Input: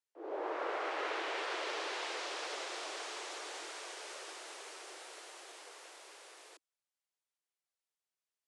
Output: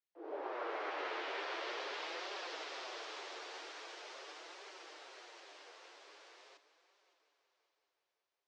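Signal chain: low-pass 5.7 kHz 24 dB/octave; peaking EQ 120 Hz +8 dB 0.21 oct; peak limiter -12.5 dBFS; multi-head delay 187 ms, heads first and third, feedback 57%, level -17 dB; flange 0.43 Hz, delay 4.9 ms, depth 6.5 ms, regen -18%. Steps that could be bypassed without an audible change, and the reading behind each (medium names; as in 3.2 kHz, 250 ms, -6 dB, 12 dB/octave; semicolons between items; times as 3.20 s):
peaking EQ 120 Hz: input has nothing below 250 Hz; peak limiter -12.5 dBFS: peak at its input -26.5 dBFS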